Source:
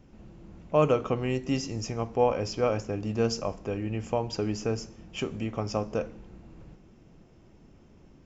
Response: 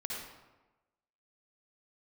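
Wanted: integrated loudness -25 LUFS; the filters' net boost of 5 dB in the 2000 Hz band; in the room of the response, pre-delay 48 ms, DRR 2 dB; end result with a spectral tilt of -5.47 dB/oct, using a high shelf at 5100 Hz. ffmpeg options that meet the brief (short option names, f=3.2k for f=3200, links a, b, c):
-filter_complex "[0:a]equalizer=f=2k:t=o:g=6,highshelf=f=5.1k:g=4,asplit=2[a][b];[1:a]atrim=start_sample=2205,adelay=48[c];[b][c]afir=irnorm=-1:irlink=0,volume=-4dB[d];[a][d]amix=inputs=2:normalize=0,volume=2dB"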